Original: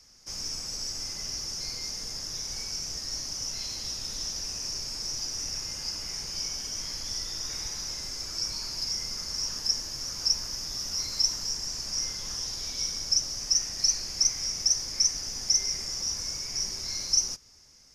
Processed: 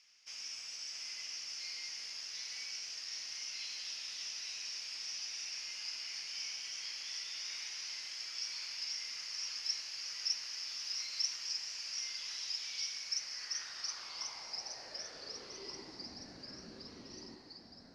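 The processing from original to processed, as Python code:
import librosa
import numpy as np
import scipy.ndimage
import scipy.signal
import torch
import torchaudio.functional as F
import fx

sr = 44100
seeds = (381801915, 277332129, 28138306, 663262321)

y = fx.filter_sweep_bandpass(x, sr, from_hz=2700.0, to_hz=260.0, start_s=12.9, end_s=16.18, q=2.9)
y = fx.echo_pitch(y, sr, ms=634, semitones=-1, count=3, db_per_echo=-6.0)
y = y * 10.0 ** (3.5 / 20.0)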